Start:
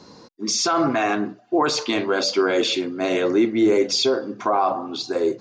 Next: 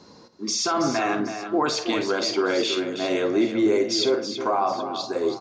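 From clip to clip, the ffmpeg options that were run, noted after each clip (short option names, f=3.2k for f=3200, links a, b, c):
-af "aecho=1:1:51|325|770:0.266|0.355|0.133,volume=-3.5dB"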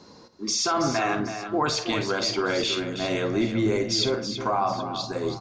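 -af "asubboost=boost=12:cutoff=110"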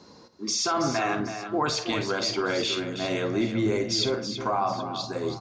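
-af "highpass=41,volume=-1.5dB"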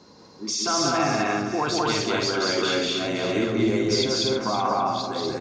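-af "aecho=1:1:186.6|244.9:0.794|0.794"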